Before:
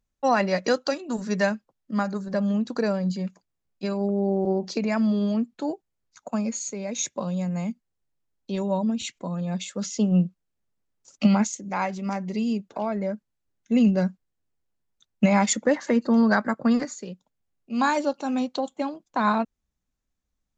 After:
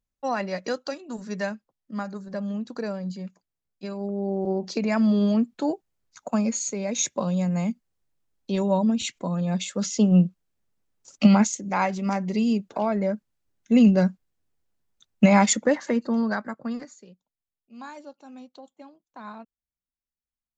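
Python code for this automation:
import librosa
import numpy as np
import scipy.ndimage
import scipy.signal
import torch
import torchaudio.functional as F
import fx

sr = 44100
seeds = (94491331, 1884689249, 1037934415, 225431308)

y = fx.gain(x, sr, db=fx.line((3.94, -6.0), (5.2, 3.0), (15.42, 3.0), (16.59, -9.0), (17.79, -18.0)))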